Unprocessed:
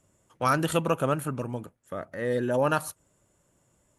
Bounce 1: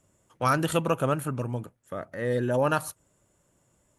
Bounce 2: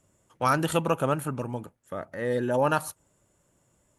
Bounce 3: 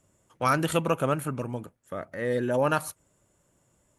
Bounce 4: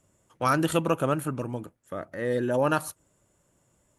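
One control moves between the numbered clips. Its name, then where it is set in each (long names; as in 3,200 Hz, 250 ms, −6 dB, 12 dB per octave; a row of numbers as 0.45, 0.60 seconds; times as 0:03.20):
dynamic equaliser, frequency: 120, 860, 2,200, 320 Hertz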